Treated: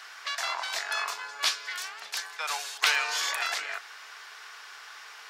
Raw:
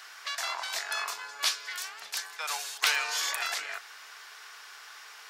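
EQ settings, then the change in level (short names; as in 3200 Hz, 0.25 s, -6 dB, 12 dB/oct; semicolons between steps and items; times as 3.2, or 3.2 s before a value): low shelf 140 Hz -7.5 dB; high shelf 7600 Hz -8.5 dB; +3.0 dB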